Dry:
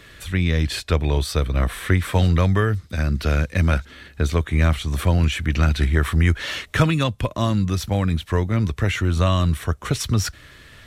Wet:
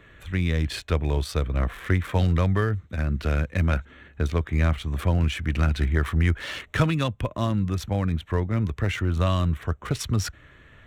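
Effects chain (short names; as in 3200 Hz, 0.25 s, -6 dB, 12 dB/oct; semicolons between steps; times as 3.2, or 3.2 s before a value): Wiener smoothing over 9 samples; gain -4 dB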